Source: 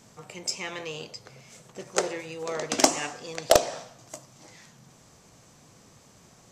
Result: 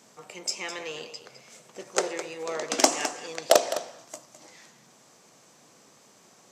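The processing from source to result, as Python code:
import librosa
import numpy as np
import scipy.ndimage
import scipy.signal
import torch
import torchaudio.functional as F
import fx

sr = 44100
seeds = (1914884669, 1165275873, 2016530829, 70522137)

y = scipy.signal.sosfilt(scipy.signal.butter(2, 260.0, 'highpass', fs=sr, output='sos'), x)
y = y + 10.0 ** (-12.0 / 20.0) * np.pad(y, (int(209 * sr / 1000.0), 0))[:len(y)]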